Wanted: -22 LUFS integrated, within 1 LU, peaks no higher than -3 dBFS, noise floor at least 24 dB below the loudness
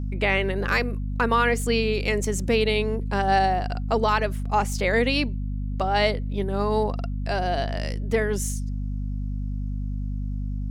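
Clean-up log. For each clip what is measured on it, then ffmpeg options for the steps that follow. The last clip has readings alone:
hum 50 Hz; harmonics up to 250 Hz; hum level -26 dBFS; loudness -25.0 LUFS; peak -9.5 dBFS; loudness target -22.0 LUFS
-> -af "bandreject=f=50:t=h:w=6,bandreject=f=100:t=h:w=6,bandreject=f=150:t=h:w=6,bandreject=f=200:t=h:w=6,bandreject=f=250:t=h:w=6"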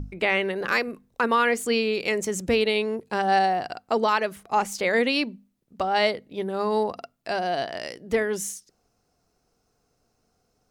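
hum none; loudness -25.0 LUFS; peak -11.0 dBFS; loudness target -22.0 LUFS
-> -af "volume=3dB"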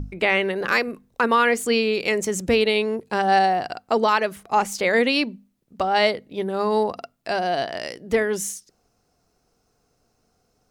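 loudness -22.0 LUFS; peak -8.0 dBFS; noise floor -69 dBFS

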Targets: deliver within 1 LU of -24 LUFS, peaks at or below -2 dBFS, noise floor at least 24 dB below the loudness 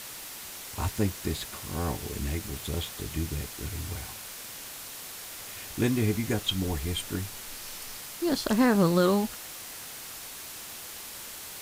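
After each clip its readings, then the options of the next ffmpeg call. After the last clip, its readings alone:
noise floor -42 dBFS; noise floor target -55 dBFS; loudness -31.0 LUFS; peak -11.0 dBFS; loudness target -24.0 LUFS
-> -af "afftdn=nr=13:nf=-42"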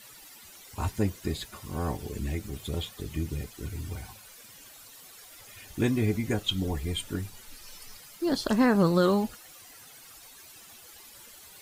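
noise floor -51 dBFS; noise floor target -54 dBFS
-> -af "afftdn=nr=6:nf=-51"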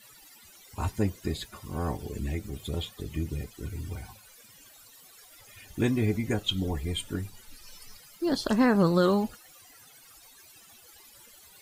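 noise floor -54 dBFS; loudness -29.5 LUFS; peak -11.5 dBFS; loudness target -24.0 LUFS
-> -af "volume=5.5dB"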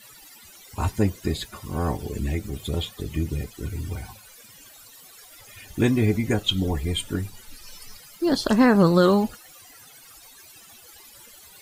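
loudness -24.0 LUFS; peak -6.0 dBFS; noise floor -49 dBFS

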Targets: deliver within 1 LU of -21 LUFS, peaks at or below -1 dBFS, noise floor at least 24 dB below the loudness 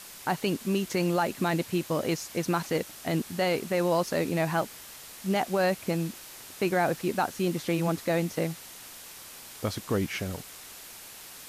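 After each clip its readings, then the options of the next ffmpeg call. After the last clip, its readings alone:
noise floor -46 dBFS; noise floor target -53 dBFS; loudness -29.0 LUFS; peak -15.0 dBFS; loudness target -21.0 LUFS
-> -af "afftdn=nr=7:nf=-46"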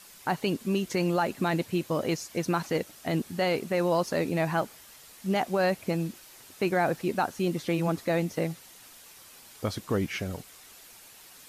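noise floor -52 dBFS; noise floor target -53 dBFS
-> -af "afftdn=nr=6:nf=-52"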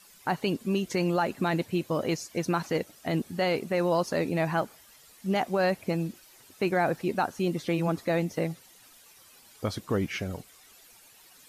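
noise floor -56 dBFS; loudness -29.0 LUFS; peak -15.5 dBFS; loudness target -21.0 LUFS
-> -af "volume=8dB"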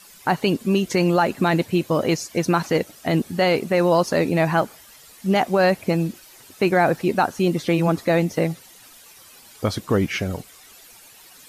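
loudness -21.0 LUFS; peak -7.5 dBFS; noise floor -48 dBFS

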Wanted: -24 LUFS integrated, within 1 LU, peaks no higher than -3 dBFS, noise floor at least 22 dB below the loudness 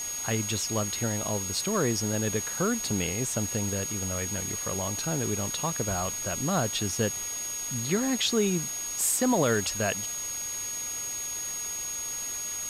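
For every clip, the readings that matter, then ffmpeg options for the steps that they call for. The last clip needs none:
steady tone 6600 Hz; tone level -32 dBFS; noise floor -34 dBFS; noise floor target -50 dBFS; loudness -28.0 LUFS; peak -14.0 dBFS; loudness target -24.0 LUFS
-> -af "bandreject=f=6.6k:w=30"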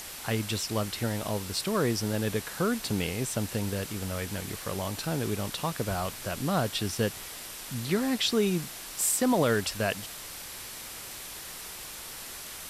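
steady tone none; noise floor -42 dBFS; noise floor target -53 dBFS
-> -af "afftdn=nr=11:nf=-42"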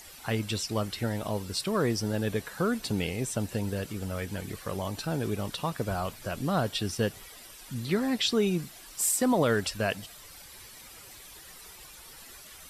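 noise floor -49 dBFS; noise floor target -52 dBFS
-> -af "afftdn=nr=6:nf=-49"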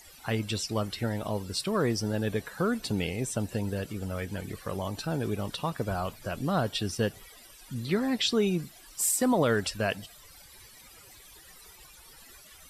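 noise floor -53 dBFS; loudness -30.0 LUFS; peak -15.0 dBFS; loudness target -24.0 LUFS
-> -af "volume=6dB"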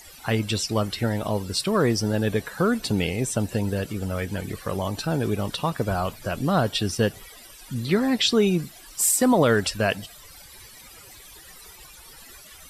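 loudness -24.0 LUFS; peak -9.0 dBFS; noise floor -47 dBFS

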